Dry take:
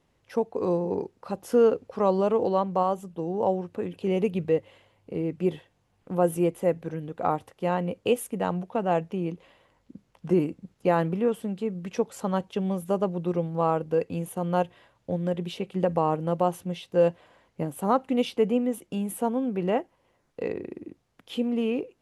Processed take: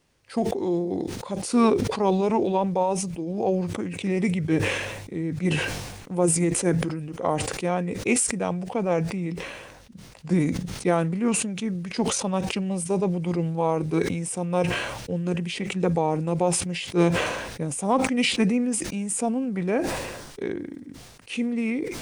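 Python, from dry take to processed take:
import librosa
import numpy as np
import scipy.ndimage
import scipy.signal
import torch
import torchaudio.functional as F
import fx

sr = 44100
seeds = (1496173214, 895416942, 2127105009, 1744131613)

y = fx.high_shelf(x, sr, hz=3000.0, db=11.0)
y = fx.formant_shift(y, sr, semitones=-3)
y = fx.sustainer(y, sr, db_per_s=41.0)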